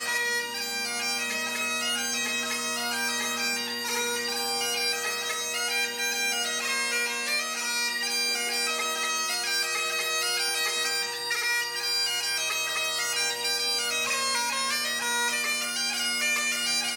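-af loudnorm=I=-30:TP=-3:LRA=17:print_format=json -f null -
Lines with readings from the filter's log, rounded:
"input_i" : "-25.7",
"input_tp" : "-15.9",
"input_lra" : "1.4",
"input_thresh" : "-35.7",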